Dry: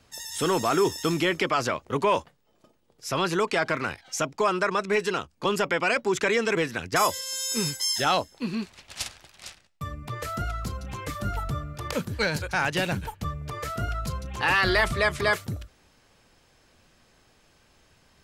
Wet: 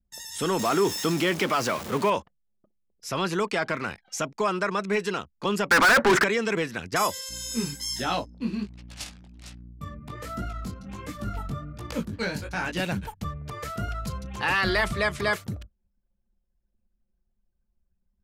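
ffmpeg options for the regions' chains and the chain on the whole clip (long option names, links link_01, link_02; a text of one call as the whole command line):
ffmpeg -i in.wav -filter_complex "[0:a]asettb=1/sr,asplit=3[link_01][link_02][link_03];[link_01]atrim=end=0.594[link_04];[link_02]atrim=start=0.59:end=2.1,asetpts=PTS-STARTPTS,afade=type=in:duration=0.004:curve=qsin,afade=type=out:start_time=1.506:duration=0.004:curve=qsin,aeval=exprs='val(0)+0.5*0.0398*sgn(val(0))':channel_layout=same,highpass=120[link_05];[link_03]atrim=start=2.096[link_06];[link_04][link_05]acrossfade=duration=0.004:curve1=hsin:curve2=qsin[link_07];[link_07][link_06]acrossfade=duration=0.004:curve1=qsin:curve2=hsin,asettb=1/sr,asplit=3[link_08][link_09][link_10];[link_08]atrim=end=5.714[link_11];[link_09]atrim=start=5.71:end=6.24,asetpts=PTS-STARTPTS,afade=type=in:duration=0.004:curve=qsin,afade=type=out:start_time=0.526:duration=0.004:curve=qsin,highshelf=frequency=2400:width_type=q:width=3:gain=-13.5,asplit=2[link_12][link_13];[link_13]highpass=frequency=720:poles=1,volume=34dB,asoftclip=type=tanh:threshold=-10dB[link_14];[link_12][link_14]amix=inputs=2:normalize=0,lowpass=frequency=5900:poles=1,volume=-6dB[link_15];[link_10]atrim=start=6.236[link_16];[link_11][link_15]acrossfade=duration=0.004:curve1=hsin:curve2=qsin[link_17];[link_17][link_16]acrossfade=duration=0.004:curve1=qsin:curve2=hsin,asettb=1/sr,asplit=3[link_18][link_19][link_20];[link_18]atrim=end=7.294[link_21];[link_19]atrim=start=7.29:end=12.8,asetpts=PTS-STARTPTS,afade=type=in:duration=0.004:curve=qsin,afade=type=out:start_time=5.506:duration=0.004:curve=qsin,equalizer=frequency=270:width_type=o:width=0.68:gain=7,aeval=exprs='val(0)+0.00891*(sin(2*PI*60*n/s)+sin(2*PI*2*60*n/s)/2+sin(2*PI*3*60*n/s)/3+sin(2*PI*4*60*n/s)/4+sin(2*PI*5*60*n/s)/5)':channel_layout=same,flanger=delay=16.5:depth=5.8:speed=1.3[link_22];[link_20]atrim=start=12.796[link_23];[link_21][link_22]acrossfade=duration=0.004:curve1=hsin:curve2=qsin[link_24];[link_24][link_23]acrossfade=duration=0.004:curve1=qsin:curve2=hsin,anlmdn=0.01,equalizer=frequency=200:width=5.7:gain=6.5,volume=-2dB" out.wav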